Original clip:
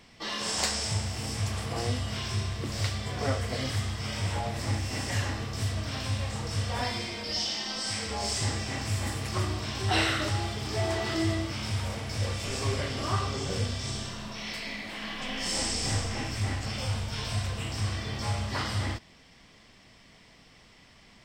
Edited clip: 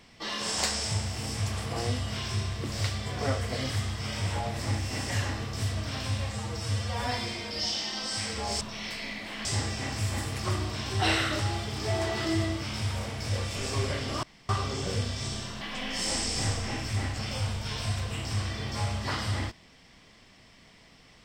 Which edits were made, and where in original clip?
0:06.30–0:06.84: time-stretch 1.5×
0:13.12: splice in room tone 0.26 s
0:14.24–0:15.08: move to 0:08.34

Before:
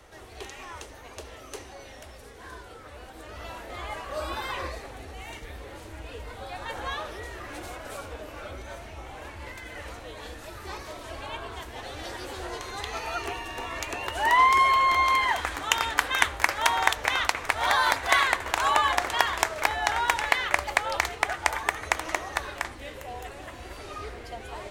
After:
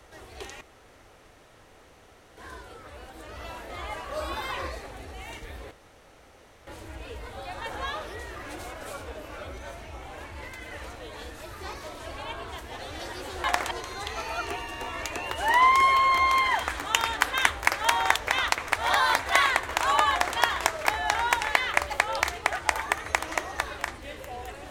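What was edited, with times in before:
0:00.61–0:02.37: fill with room tone
0:05.71: splice in room tone 0.96 s
0:18.88–0:19.15: duplicate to 0:12.48

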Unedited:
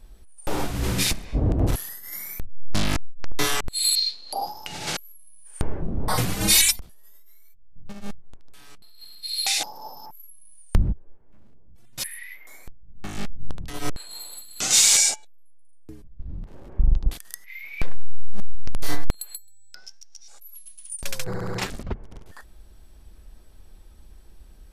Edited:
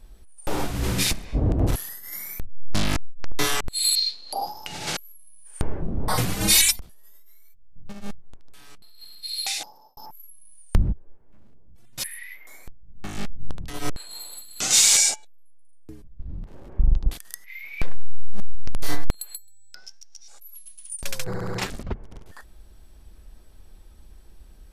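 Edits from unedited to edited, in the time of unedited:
0:09.19–0:09.97: fade out linear

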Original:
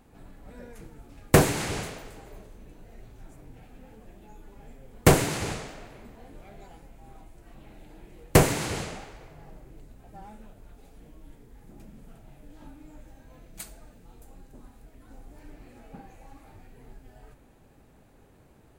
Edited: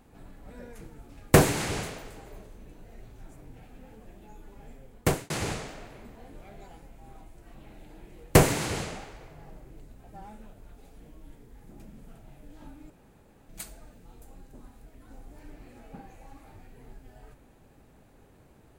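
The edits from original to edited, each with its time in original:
0:04.77–0:05.30: fade out
0:12.90–0:13.49: fill with room tone

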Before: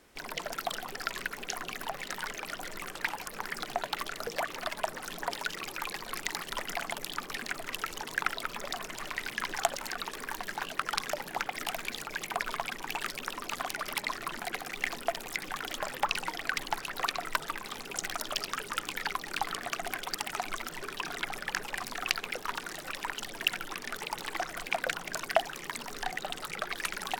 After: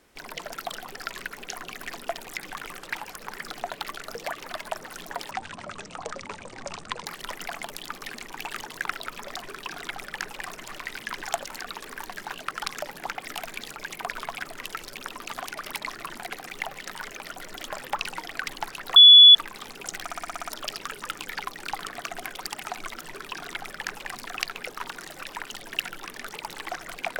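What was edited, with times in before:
0:01.86–0:02.78: swap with 0:14.85–0:15.65
0:05.43–0:06.34: play speed 52%
0:07.51–0:07.97: swap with 0:12.73–0:13.10
0:17.06–0:17.45: beep over 3,420 Hz −6.5 dBFS
0:18.13: stutter 0.06 s, 8 plays
0:20.78–0:21.84: duplicate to 0:08.81

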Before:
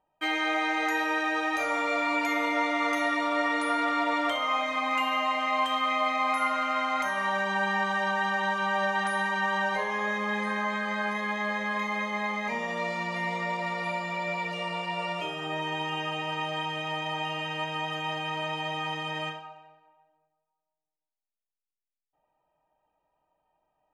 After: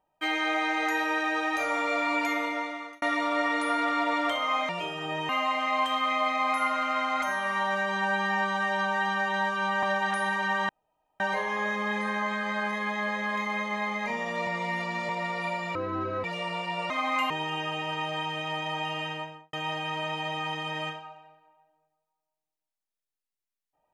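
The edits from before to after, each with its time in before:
0:02.26–0:03.02: fade out
0:04.69–0:05.09: swap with 0:15.10–0:15.70
0:07.02–0:08.76: time-stretch 1.5×
0:09.62: splice in room tone 0.51 s
0:12.89–0:13.51: reverse
0:14.17–0:14.44: play speed 55%
0:17.44–0:17.93: fade out and dull

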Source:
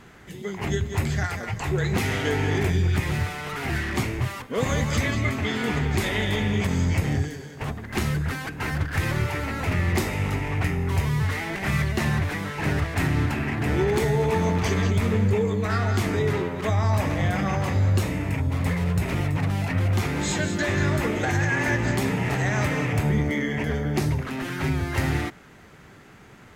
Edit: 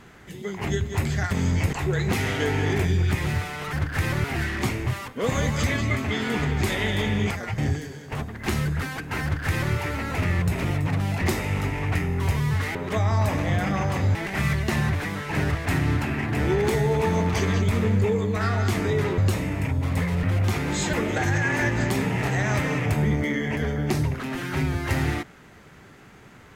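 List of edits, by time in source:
0:01.31–0:01.58: swap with 0:06.65–0:07.07
0:08.72–0:09.23: duplicate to 0:03.58
0:16.47–0:17.87: move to 0:11.44
0:18.92–0:19.72: move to 0:09.91
0:20.42–0:21.00: remove

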